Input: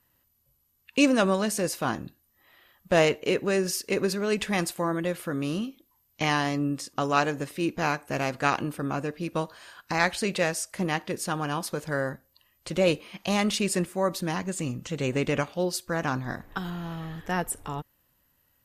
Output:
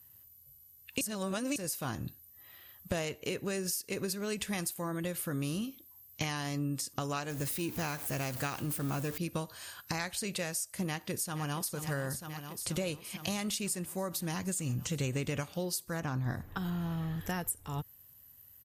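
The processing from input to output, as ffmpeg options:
-filter_complex "[0:a]asettb=1/sr,asplit=3[a][b][c];[a]atrim=end=7.304[d];[b]atrim=start=7.3:end=9.18,asetpts=PTS-STARTPTS,afade=t=in:d=0.004:c=qsin,afade=t=out:st=1.876:d=0.004:c=qsin,aeval=exprs='val(0)+0.5*0.0141*sgn(val(0))':c=same[e];[c]atrim=start=9.176[f];[d][e]acrossfade=d=0.004:c1=hsin:c2=qsin[g];[g][f]acrossfade=d=0.004:c1=qsin:c2=hsin,asplit=2[h][i];[i]afade=t=in:st=10.86:d=0.01,afade=t=out:st=11.7:d=0.01,aecho=0:1:470|940|1410|1880|2350|2820|3290|3760|4230|4700|5170:0.223872|0.167904|0.125928|0.094446|0.0708345|0.0531259|0.0398444|0.0298833|0.0224125|0.0168094|0.012607[j];[h][j]amix=inputs=2:normalize=0,asettb=1/sr,asplit=3[k][l][m];[k]atrim=end=16.004[n];[l]atrim=start=16:end=17.21,asetpts=PTS-STARTPTS,afade=t=in:d=0.004:c=qsin,afade=t=out:st=1.206:d=0.004:c=qsin,highshelf=f=2.7k:g=-9.5[o];[m]atrim=start=17.206[p];[n][o]acrossfade=d=0.004:c1=hsin:c2=qsin[q];[q][p]acrossfade=d=0.004:c1=qsin:c2=hsin,asplit=3[r][s][t];[r]atrim=end=1.012[u];[s]atrim=start=1.008:end=1.562,asetpts=PTS-STARTPTS,areverse[v];[t]atrim=start=1.558[w];[u][v]acrossfade=d=0.004:c1=hsin:c2=hsin[x];[x][w]acrossfade=d=0.004:c1=hsin:c2=hsin,aemphasis=mode=production:type=75fm,acompressor=threshold=-31dB:ratio=5,equalizer=f=98:t=o:w=1.4:g=12.5,volume=-3dB"

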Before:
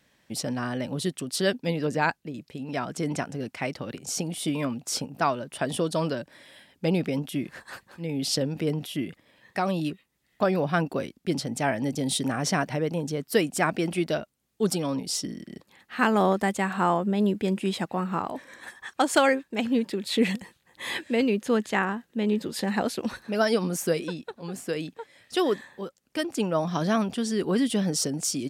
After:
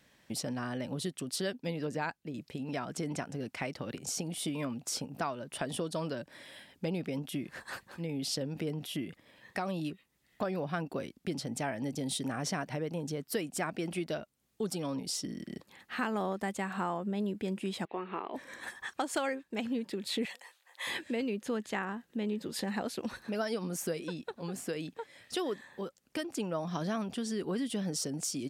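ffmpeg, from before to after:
-filter_complex "[0:a]asettb=1/sr,asplit=3[a][b][c];[a]atrim=end=17.854[d];[b]atrim=start=17.85:end=18.34,asetpts=PTS-STARTPTS,afade=t=in:d=0.004:c=qsin,afade=t=out:st=0.486:d=0.004:c=qsin,highpass=380,equalizer=f=390:t=q:w=4:g=9,equalizer=f=570:t=q:w=4:g=-4,equalizer=f=800:t=q:w=4:g=-4,equalizer=f=1.4k:t=q:w=4:g=-6,equalizer=f=2.3k:t=q:w=4:g=5,equalizer=f=3.3k:t=q:w=4:g=5,lowpass=f=3.4k:w=0.5412,lowpass=f=3.4k:w=1.3066[e];[c]atrim=start=18.336[f];[d][e]acrossfade=d=0.004:c1=hsin:c2=qsin[g];[g][f]acrossfade=d=0.004:c1=qsin:c2=hsin,asettb=1/sr,asplit=3[h][i][j];[h]atrim=end=20.254[k];[i]atrim=start=20.25:end=20.87,asetpts=PTS-STARTPTS,afade=t=in:d=0.004:c=qsin,afade=t=out:st=0.616:d=0.004:c=qsin,highpass=f=580:w=0.5412,highpass=f=580:w=1.3066[l];[j]atrim=start=20.866[m];[k][l]acrossfade=d=0.004:c1=hsin:c2=qsin[n];[n][m]acrossfade=d=0.004:c1=qsin:c2=hsin,acompressor=threshold=-36dB:ratio=2.5"

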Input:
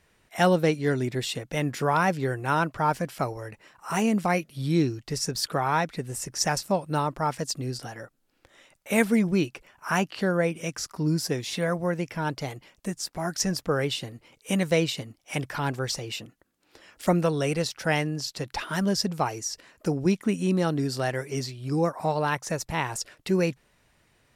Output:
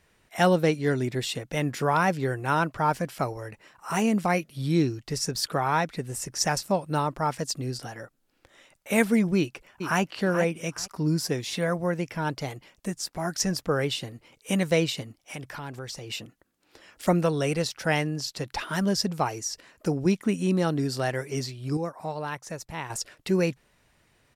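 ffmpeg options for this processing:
-filter_complex "[0:a]asplit=2[a][b];[b]afade=t=in:st=9.37:d=0.01,afade=t=out:st=10.01:d=0.01,aecho=0:1:430|860|1290:0.354813|0.0709627|0.0141925[c];[a][c]amix=inputs=2:normalize=0,asettb=1/sr,asplit=3[d][e][f];[d]atrim=end=15.204[g];[e]atrim=start=15.2:end=16.1,asetpts=PTS-STARTPTS,afade=t=in:d=0.004:c=qsin,afade=t=out:st=0.896:d=0.004:c=qsin,acompressor=threshold=-37dB:ratio=2.5:attack=3.2:release=140:knee=1:detection=peak[h];[f]atrim=start=16.096[i];[g][h]acrossfade=d=0.004:c1=hsin:c2=qsin[j];[j][i]acrossfade=d=0.004:c1=qsin:c2=hsin,asplit=3[k][l][m];[k]atrim=end=21.772[n];[l]atrim=start=21.768:end=22.902,asetpts=PTS-STARTPTS,volume=-7dB[o];[m]atrim=start=22.898[p];[n][o]acrossfade=d=0.004:c1=hsin:c2=hsin[q];[q][p]acrossfade=d=0.004:c1=hsin:c2=hsin"

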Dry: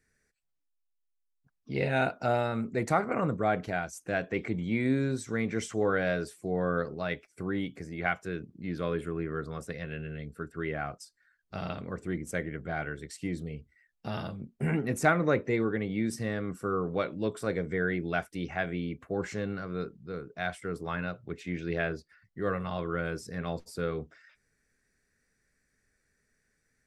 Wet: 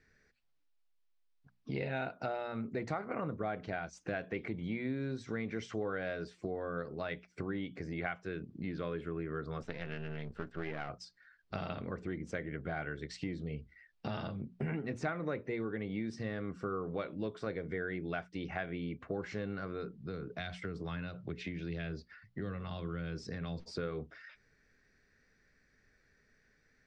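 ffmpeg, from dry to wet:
-filter_complex "[0:a]asettb=1/sr,asplit=3[a][b][c];[a]atrim=end=9.624[d];[b]atrim=start=9.62:end=10.89,asetpts=PTS-STARTPTS,afade=t=in:d=0.004:c=qsin,afade=t=out:st=1.266:d=0.004:c=qsin,aeval=exprs='if(lt(val(0),0),0.251*val(0),val(0))':c=same[e];[c]atrim=start=10.886[f];[d][e]acrossfade=d=0.004:c1=hsin:c2=qsin[g];[g][f]acrossfade=d=0.004:c1=qsin:c2=hsin,asettb=1/sr,asplit=3[h][i][j];[h]atrim=end=19.924[k];[i]atrim=start=19.92:end=23.71,asetpts=PTS-STARTPTS,afade=t=in:d=0.004:c=qsin,afade=t=out:st=3.786:d=0.004:c=qsin,acrossover=split=240|3000[l][m][n];[m]acompressor=threshold=-43dB:ratio=6:attack=3.2:release=140:knee=2.83:detection=peak[o];[l][o][n]amix=inputs=3:normalize=0[p];[j]atrim=start=23.706[q];[k][p]acrossfade=d=0.004:c1=hsin:c2=qsin[r];[r][q]acrossfade=d=0.004:c1=qsin:c2=hsin,lowpass=f=5.1k:w=0.5412,lowpass=f=5.1k:w=1.3066,acompressor=threshold=-42dB:ratio=4,bandreject=f=60:t=h:w=6,bandreject=f=120:t=h:w=6,bandreject=f=180:t=h:w=6,bandreject=f=240:t=h:w=6,volume=5.5dB"

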